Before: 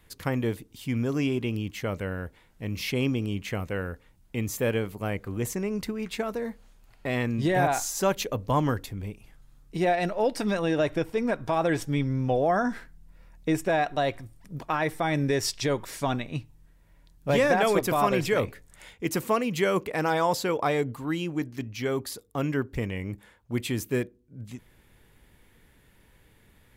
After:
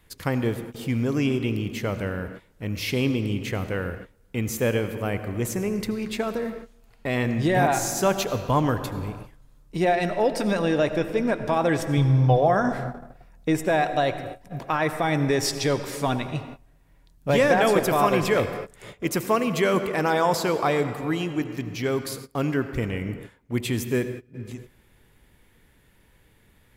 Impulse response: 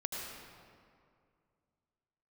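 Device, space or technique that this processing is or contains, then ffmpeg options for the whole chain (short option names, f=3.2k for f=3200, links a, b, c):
keyed gated reverb: -filter_complex "[0:a]asettb=1/sr,asplit=3[a][b][c];[a]atrim=end=11.974[d];[b]atrim=start=11.97:end=12.48,asetpts=PTS-STARTPTS,afade=t=in:d=0.004:c=qsin,afade=t=out:st=0.506:d=0.004:c=qsin,equalizer=f=125:t=o:w=1:g=9,equalizer=f=250:t=o:w=1:g=-6,equalizer=f=1k:t=o:w=1:g=9,equalizer=f=2k:t=o:w=1:g=-11,equalizer=f=4k:t=o:w=1:g=9,equalizer=f=8k:t=o:w=1:g=-4[e];[c]atrim=start=12.476[f];[d][e]acrossfade=d=0.004:c1=hsin:c2=qsin[g];[g][f]acrossfade=d=0.004:c1=qsin:c2=hsin,asplit=3[h][i][j];[1:a]atrim=start_sample=2205[k];[i][k]afir=irnorm=-1:irlink=0[l];[j]apad=whole_len=1180548[m];[l][m]sidechaingate=range=-23dB:threshold=-47dB:ratio=16:detection=peak,volume=-7dB[n];[h][n]amix=inputs=2:normalize=0"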